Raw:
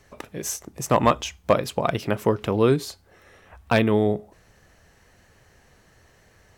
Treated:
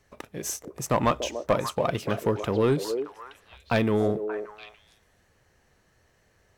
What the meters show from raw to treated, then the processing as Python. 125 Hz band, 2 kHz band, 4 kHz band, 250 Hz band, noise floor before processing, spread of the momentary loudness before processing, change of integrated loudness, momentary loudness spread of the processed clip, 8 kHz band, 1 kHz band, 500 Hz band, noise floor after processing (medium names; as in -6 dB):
-3.5 dB, -4.0 dB, -3.5 dB, -3.5 dB, -58 dBFS, 11 LU, -4.0 dB, 16 LU, -2.5 dB, -4.0 dB, -3.0 dB, -66 dBFS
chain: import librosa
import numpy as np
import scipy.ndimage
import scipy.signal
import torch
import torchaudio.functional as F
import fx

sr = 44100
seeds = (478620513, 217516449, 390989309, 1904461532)

y = fx.leveller(x, sr, passes=1)
y = fx.echo_stepped(y, sr, ms=290, hz=460.0, octaves=1.4, feedback_pct=70, wet_db=-5)
y = y * librosa.db_to_amplitude(-6.5)